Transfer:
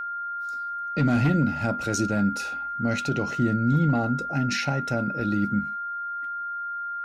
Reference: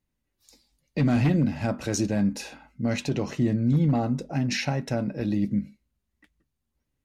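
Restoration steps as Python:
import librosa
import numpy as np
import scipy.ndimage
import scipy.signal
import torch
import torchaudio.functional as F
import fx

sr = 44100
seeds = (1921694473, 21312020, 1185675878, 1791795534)

y = fx.notch(x, sr, hz=1400.0, q=30.0)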